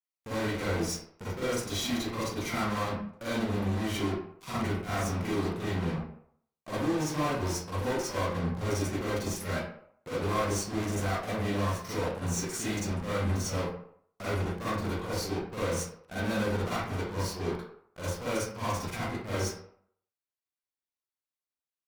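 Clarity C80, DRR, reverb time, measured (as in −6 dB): 2.5 dB, −11.0 dB, 0.65 s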